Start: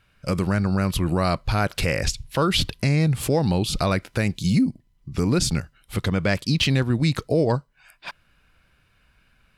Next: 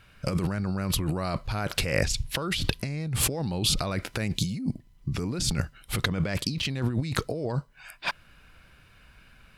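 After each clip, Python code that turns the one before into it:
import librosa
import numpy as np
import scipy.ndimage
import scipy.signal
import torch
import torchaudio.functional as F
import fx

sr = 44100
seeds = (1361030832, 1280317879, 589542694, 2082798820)

y = fx.over_compress(x, sr, threshold_db=-28.0, ratio=-1.0)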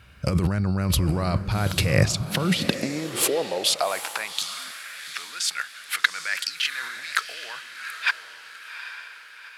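y = fx.echo_diffused(x, sr, ms=796, feedback_pct=45, wet_db=-10.0)
y = fx.filter_sweep_highpass(y, sr, from_hz=65.0, to_hz=1600.0, start_s=1.46, end_s=4.71, q=2.5)
y = y * librosa.db_to_amplitude(3.0)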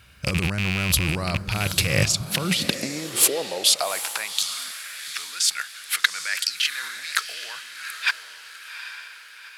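y = fx.rattle_buzz(x, sr, strikes_db=-21.0, level_db=-14.0)
y = fx.high_shelf(y, sr, hz=2900.0, db=10.0)
y = y * librosa.db_to_amplitude(-3.0)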